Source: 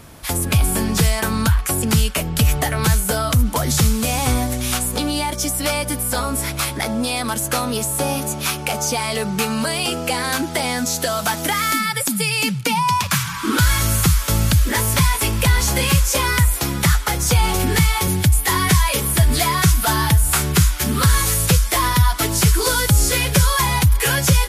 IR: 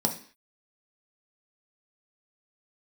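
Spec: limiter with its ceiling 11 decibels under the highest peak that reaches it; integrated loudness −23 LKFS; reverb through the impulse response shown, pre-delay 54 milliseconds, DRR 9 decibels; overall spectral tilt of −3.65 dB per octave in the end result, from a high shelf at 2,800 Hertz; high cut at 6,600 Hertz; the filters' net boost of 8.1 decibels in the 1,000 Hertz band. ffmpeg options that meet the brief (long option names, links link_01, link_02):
-filter_complex "[0:a]lowpass=6600,equalizer=frequency=1000:width_type=o:gain=8.5,highshelf=frequency=2800:gain=6.5,alimiter=limit=-9dB:level=0:latency=1,asplit=2[link_01][link_02];[1:a]atrim=start_sample=2205,adelay=54[link_03];[link_02][link_03]afir=irnorm=-1:irlink=0,volume=-17.5dB[link_04];[link_01][link_04]amix=inputs=2:normalize=0,volume=-5.5dB"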